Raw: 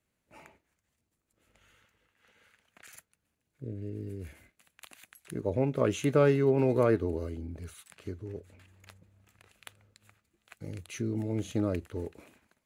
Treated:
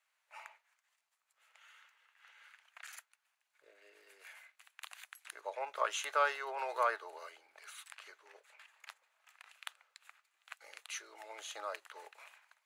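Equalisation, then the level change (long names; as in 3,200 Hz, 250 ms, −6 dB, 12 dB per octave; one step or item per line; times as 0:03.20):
inverse Chebyshev high-pass filter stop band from 250 Hz, stop band 60 dB
high-shelf EQ 6,500 Hz −10 dB
dynamic equaliser 2,300 Hz, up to −6 dB, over −59 dBFS, Q 2.2
+5.5 dB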